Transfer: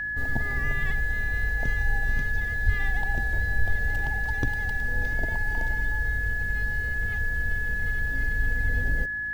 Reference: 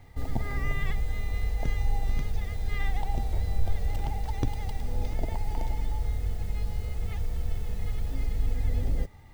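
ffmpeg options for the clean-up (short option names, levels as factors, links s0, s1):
-filter_complex "[0:a]adeclick=t=4,bandreject=f=54.6:t=h:w=4,bandreject=f=109.2:t=h:w=4,bandreject=f=163.8:t=h:w=4,bandreject=f=218.4:t=h:w=4,bandreject=f=273:t=h:w=4,bandreject=f=327.6:t=h:w=4,bandreject=f=1700:w=30,asplit=3[s0][s1][s2];[s0]afade=t=out:st=2.65:d=0.02[s3];[s1]highpass=f=140:w=0.5412,highpass=f=140:w=1.3066,afade=t=in:st=2.65:d=0.02,afade=t=out:st=2.77:d=0.02[s4];[s2]afade=t=in:st=2.77:d=0.02[s5];[s3][s4][s5]amix=inputs=3:normalize=0"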